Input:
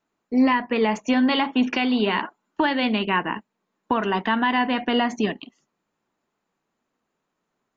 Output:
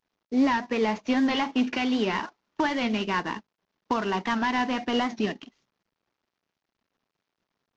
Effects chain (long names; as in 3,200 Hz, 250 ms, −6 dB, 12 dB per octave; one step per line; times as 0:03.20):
variable-slope delta modulation 32 kbit/s
wow of a warped record 78 rpm, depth 100 cents
level −3.5 dB